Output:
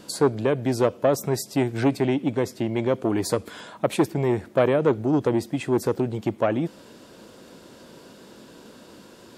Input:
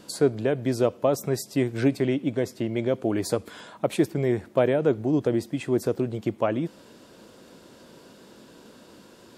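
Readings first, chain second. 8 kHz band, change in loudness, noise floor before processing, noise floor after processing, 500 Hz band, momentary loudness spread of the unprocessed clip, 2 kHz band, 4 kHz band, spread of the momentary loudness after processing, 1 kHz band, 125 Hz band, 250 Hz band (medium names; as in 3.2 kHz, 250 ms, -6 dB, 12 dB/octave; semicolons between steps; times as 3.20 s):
+3.0 dB, +1.5 dB, -51 dBFS, -48 dBFS, +1.5 dB, 6 LU, +2.5 dB, +2.5 dB, 6 LU, +5.0 dB, +2.0 dB, +1.5 dB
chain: transformer saturation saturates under 570 Hz; trim +3 dB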